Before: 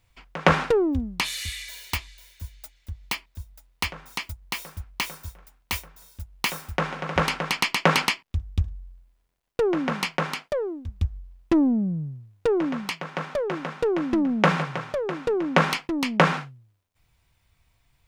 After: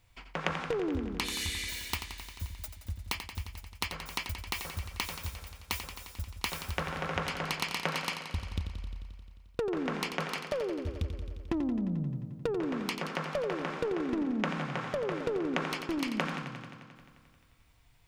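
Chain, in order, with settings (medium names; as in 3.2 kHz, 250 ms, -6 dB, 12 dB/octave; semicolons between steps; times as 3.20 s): compression 6:1, threshold -31 dBFS, peak gain reduction 17.5 dB; modulated delay 88 ms, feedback 75%, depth 51 cents, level -9 dB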